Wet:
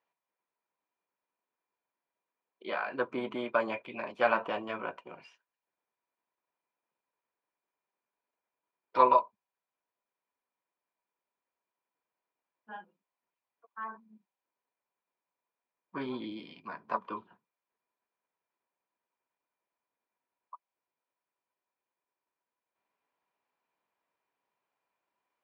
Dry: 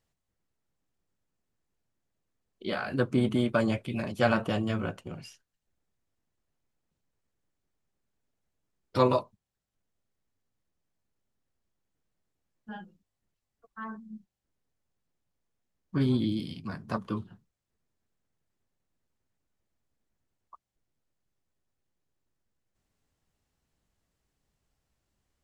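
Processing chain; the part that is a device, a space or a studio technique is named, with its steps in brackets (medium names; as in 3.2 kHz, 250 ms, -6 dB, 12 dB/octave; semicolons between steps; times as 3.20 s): tin-can telephone (band-pass 500–2300 Hz; small resonant body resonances 980/2400 Hz, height 12 dB, ringing for 40 ms)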